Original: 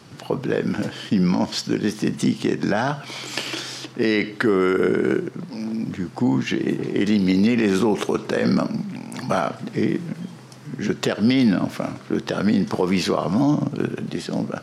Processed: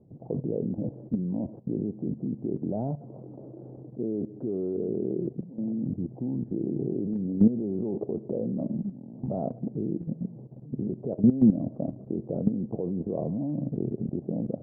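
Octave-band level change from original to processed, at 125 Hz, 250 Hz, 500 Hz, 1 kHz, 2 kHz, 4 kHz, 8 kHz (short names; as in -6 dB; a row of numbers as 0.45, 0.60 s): -5.5 dB, -6.5 dB, -9.5 dB, -18.5 dB, under -40 dB, under -40 dB, under -40 dB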